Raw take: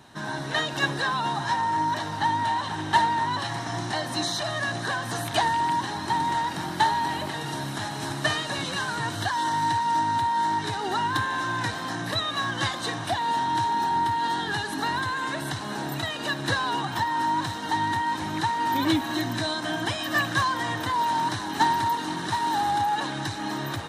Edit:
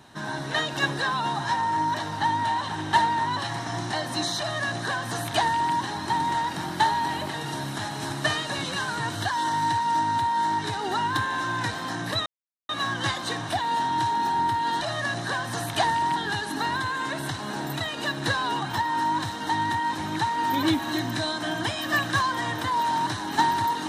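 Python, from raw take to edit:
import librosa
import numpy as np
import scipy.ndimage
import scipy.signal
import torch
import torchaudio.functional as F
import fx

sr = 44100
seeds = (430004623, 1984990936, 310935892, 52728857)

y = fx.edit(x, sr, fx.duplicate(start_s=4.39, length_s=1.35, to_s=14.38),
    fx.insert_silence(at_s=12.26, length_s=0.43), tone=tone)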